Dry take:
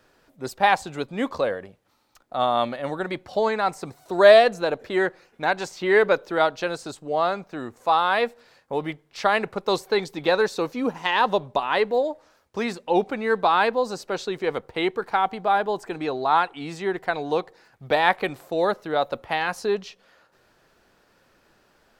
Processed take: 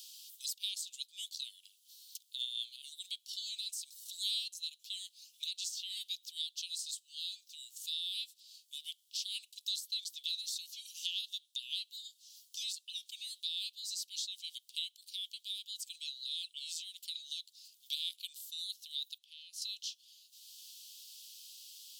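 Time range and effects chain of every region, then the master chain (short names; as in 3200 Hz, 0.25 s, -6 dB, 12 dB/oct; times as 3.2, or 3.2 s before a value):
19.18–19.62 LPF 3100 Hz 6 dB/oct + compressor 2.5:1, threshold -45 dBFS
whole clip: steep high-pass 3000 Hz 72 dB/oct; high shelf 4600 Hz +10 dB; three-band squash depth 70%; gain -5 dB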